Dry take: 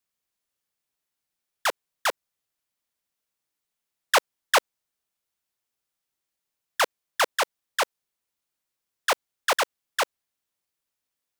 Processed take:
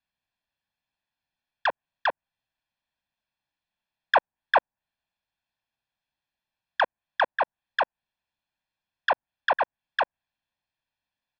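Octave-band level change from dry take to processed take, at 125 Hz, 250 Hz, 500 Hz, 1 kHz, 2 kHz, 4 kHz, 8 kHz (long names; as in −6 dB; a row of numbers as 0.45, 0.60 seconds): can't be measured, −3.0 dB, −1.0 dB, +1.0 dB, 0.0 dB, −6.5 dB, below −30 dB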